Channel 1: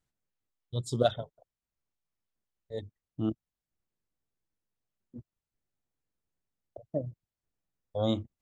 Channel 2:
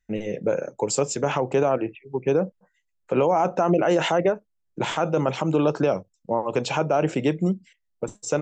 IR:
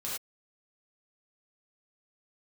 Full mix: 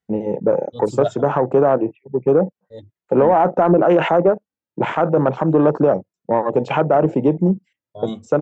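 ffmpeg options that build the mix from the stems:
-filter_complex "[0:a]asplit=2[s0][s1];[s1]adelay=2.3,afreqshift=1.6[s2];[s0][s2]amix=inputs=2:normalize=1,volume=0.794[s3];[1:a]afwtdn=0.0355,volume=1.12[s4];[s3][s4]amix=inputs=2:normalize=0,highpass=120,highshelf=f=4500:g=-10.5,acontrast=67"

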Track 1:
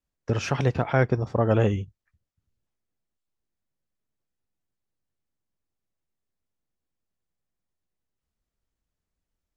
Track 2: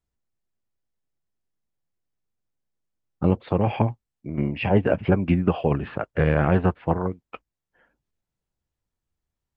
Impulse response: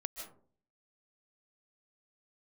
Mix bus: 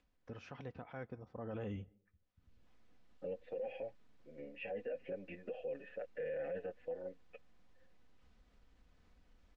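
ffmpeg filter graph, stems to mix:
-filter_complex "[0:a]lowpass=3700,acompressor=mode=upward:threshold=0.0224:ratio=2.5,volume=0.251,afade=t=in:st=1.31:d=0.68:silence=0.266073,asplit=2[s0][s1];[s1]volume=0.0631[s2];[1:a]asplit=3[s3][s4][s5];[s3]bandpass=f=530:t=q:w=8,volume=1[s6];[s4]bandpass=f=1840:t=q:w=8,volume=0.501[s7];[s5]bandpass=f=2480:t=q:w=8,volume=0.355[s8];[s6][s7][s8]amix=inputs=3:normalize=0,asplit=2[s9][s10];[s10]adelay=6.6,afreqshift=1.5[s11];[s9][s11]amix=inputs=2:normalize=1,volume=0.596[s12];[2:a]atrim=start_sample=2205[s13];[s2][s13]afir=irnorm=-1:irlink=0[s14];[s0][s12][s14]amix=inputs=3:normalize=0,aecho=1:1:4:0.37,alimiter=level_in=3.35:limit=0.0631:level=0:latency=1:release=27,volume=0.299"

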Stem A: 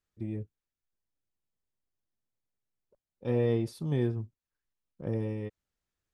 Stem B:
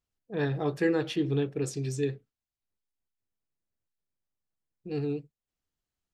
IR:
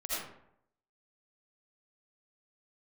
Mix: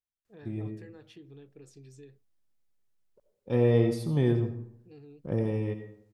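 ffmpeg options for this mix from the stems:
-filter_complex "[0:a]adelay=250,volume=1.33,asplit=2[s0][s1];[s1]volume=0.299[s2];[1:a]acompressor=threshold=0.0251:ratio=4,volume=0.158,asplit=2[s3][s4];[s4]apad=whole_len=281603[s5];[s0][s5]sidechaincompress=threshold=0.00251:ratio=8:attack=5.3:release=150[s6];[2:a]atrim=start_sample=2205[s7];[s2][s7]afir=irnorm=-1:irlink=0[s8];[s6][s3][s8]amix=inputs=3:normalize=0"

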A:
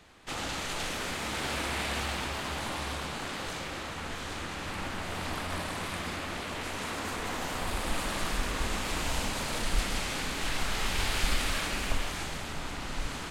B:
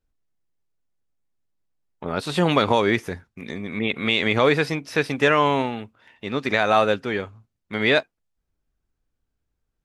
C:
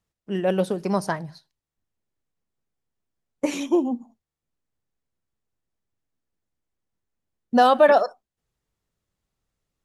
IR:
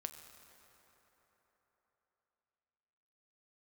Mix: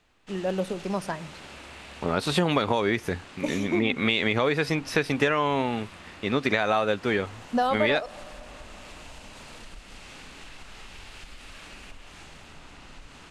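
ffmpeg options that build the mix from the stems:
-filter_complex "[0:a]lowpass=9400,equalizer=f=2700:w=7:g=5,acompressor=threshold=0.0316:ratio=6,volume=0.316[s0];[1:a]volume=1.33[s1];[2:a]volume=0.422,asplit=2[s2][s3];[s3]volume=0.355[s4];[3:a]atrim=start_sample=2205[s5];[s4][s5]afir=irnorm=-1:irlink=0[s6];[s0][s1][s2][s6]amix=inputs=4:normalize=0,acompressor=threshold=0.112:ratio=10"

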